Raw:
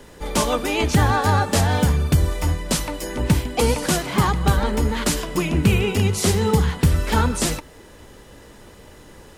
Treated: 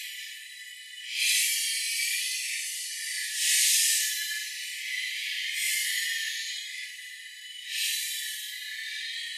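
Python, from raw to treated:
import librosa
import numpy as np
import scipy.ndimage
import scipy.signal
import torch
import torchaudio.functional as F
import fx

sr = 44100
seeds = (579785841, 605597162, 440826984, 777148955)

y = fx.paulstretch(x, sr, seeds[0], factor=7.4, window_s=0.05, from_s=3.42)
y = fx.brickwall_bandpass(y, sr, low_hz=1700.0, high_hz=14000.0)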